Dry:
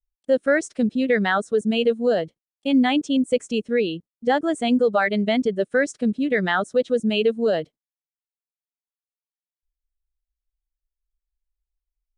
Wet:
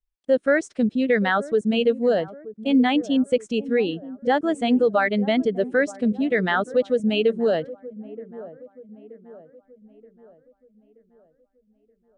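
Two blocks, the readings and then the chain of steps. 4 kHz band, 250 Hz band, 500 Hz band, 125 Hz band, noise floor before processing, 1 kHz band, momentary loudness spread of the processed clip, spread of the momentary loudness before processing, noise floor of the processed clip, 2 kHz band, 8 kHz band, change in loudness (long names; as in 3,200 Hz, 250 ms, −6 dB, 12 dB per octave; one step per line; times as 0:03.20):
−1.5 dB, 0.0 dB, 0.0 dB, 0.0 dB, below −85 dBFS, 0.0 dB, 15 LU, 4 LU, −68 dBFS, −0.5 dB, can't be measured, 0.0 dB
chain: high-shelf EQ 7,100 Hz −11 dB
delay with a low-pass on its return 927 ms, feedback 46%, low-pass 810 Hz, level −16 dB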